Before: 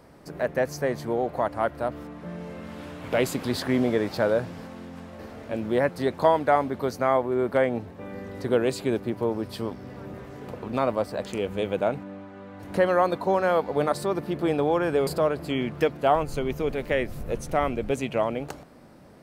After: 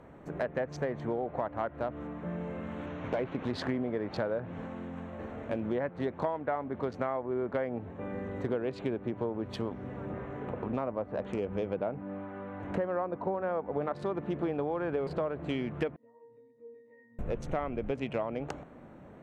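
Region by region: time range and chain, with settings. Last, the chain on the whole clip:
0:02.86–0:03.52: variable-slope delta modulation 32 kbit/s + high-pass filter 40 Hz + notch filter 4,900 Hz, Q 5
0:10.10–0:13.82: low-pass filter 1,400 Hz 6 dB per octave + one half of a high-frequency compander encoder only
0:15.96–0:17.19: loudspeaker in its box 270–3,200 Hz, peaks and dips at 270 Hz +6 dB, 390 Hz +7 dB, 700 Hz +3 dB, 1,000 Hz −3 dB, 1,900 Hz +5 dB, 2,800 Hz +10 dB + downward compressor, threshold −33 dBFS + resonances in every octave A#, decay 0.79 s
whole clip: adaptive Wiener filter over 9 samples; treble cut that deepens with the level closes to 2,300 Hz, closed at −20 dBFS; downward compressor, threshold −29 dBFS

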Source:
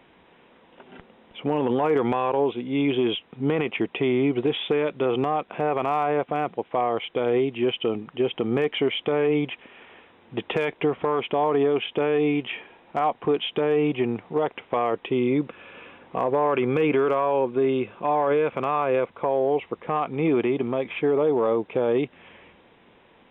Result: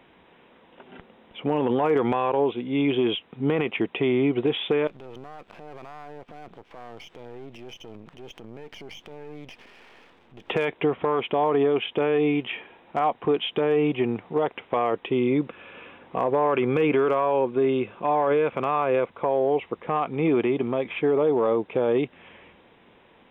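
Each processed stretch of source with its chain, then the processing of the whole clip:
0:04.87–0:10.50: gain on one half-wave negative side −12 dB + downward compressor 2.5 to 1, threshold −44 dBFS + transient designer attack −4 dB, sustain +7 dB
whole clip: no processing

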